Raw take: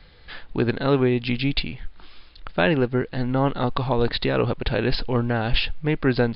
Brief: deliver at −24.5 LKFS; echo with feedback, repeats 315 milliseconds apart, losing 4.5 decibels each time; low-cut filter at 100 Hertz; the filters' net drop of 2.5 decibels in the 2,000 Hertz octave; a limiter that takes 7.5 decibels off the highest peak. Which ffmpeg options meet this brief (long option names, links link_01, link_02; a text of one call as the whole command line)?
ffmpeg -i in.wav -af "highpass=100,equalizer=frequency=2000:width_type=o:gain=-3.5,alimiter=limit=-13.5dB:level=0:latency=1,aecho=1:1:315|630|945|1260|1575|1890|2205|2520|2835:0.596|0.357|0.214|0.129|0.0772|0.0463|0.0278|0.0167|0.01" out.wav